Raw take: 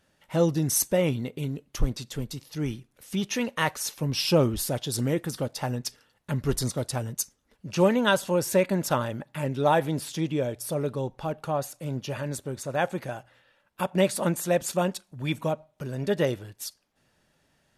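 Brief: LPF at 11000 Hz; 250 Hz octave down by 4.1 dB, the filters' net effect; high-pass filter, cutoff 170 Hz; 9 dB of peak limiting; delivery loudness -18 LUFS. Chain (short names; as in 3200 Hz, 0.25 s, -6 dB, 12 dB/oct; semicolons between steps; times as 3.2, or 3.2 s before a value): HPF 170 Hz; LPF 11000 Hz; bell 250 Hz -4 dB; gain +13.5 dB; limiter -4 dBFS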